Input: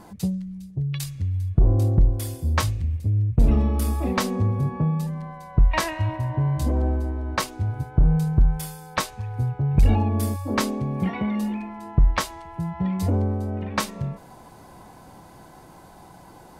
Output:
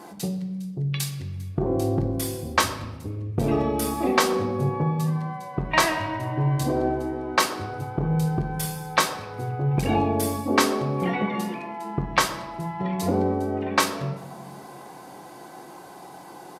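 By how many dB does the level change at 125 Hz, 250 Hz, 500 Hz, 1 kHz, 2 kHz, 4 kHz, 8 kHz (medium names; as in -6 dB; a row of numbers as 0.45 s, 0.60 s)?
-5.0 dB, 0.0 dB, +6.0 dB, +5.5 dB, +5.5 dB, +5.5 dB, +5.0 dB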